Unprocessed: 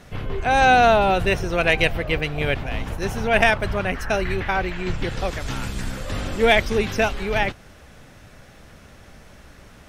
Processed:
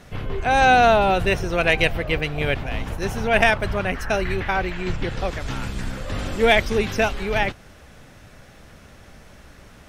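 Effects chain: 4.96–6.19 high shelf 5600 Hz -6.5 dB

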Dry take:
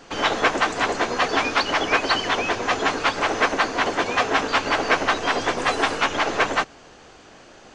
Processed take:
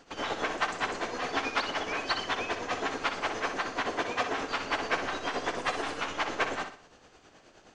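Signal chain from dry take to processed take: tremolo 9.5 Hz, depth 64%; flutter echo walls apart 10.6 m, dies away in 0.44 s; gain -8 dB

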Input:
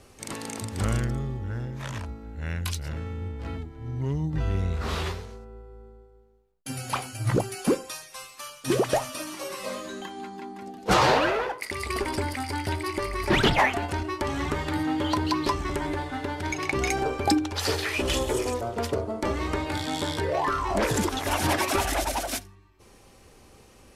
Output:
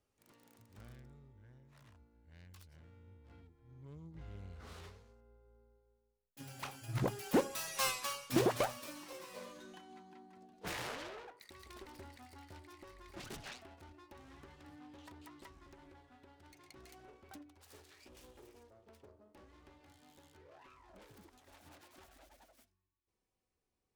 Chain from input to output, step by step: self-modulated delay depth 0.6 ms; Doppler pass-by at 7.87, 15 m/s, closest 1.3 m; gain +9.5 dB

